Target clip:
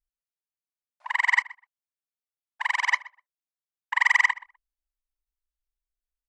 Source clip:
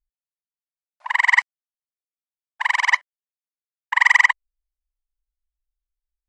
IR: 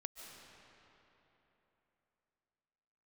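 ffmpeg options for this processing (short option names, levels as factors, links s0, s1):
-filter_complex "[0:a]asplit=2[s0][s1];[s1]adelay=125,lowpass=f=1900:p=1,volume=0.126,asplit=2[s2][s3];[s3]adelay=125,lowpass=f=1900:p=1,volume=0.16[s4];[s0][s2][s4]amix=inputs=3:normalize=0,volume=0.501"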